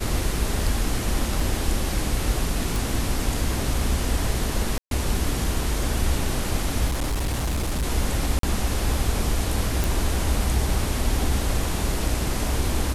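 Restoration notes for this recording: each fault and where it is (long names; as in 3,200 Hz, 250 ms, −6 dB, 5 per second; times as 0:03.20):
0:01.40: drop-out 3 ms
0:02.76: click
0:04.78–0:04.91: drop-out 132 ms
0:06.87–0:07.84: clipping −21 dBFS
0:08.39–0:08.43: drop-out 43 ms
0:09.84: click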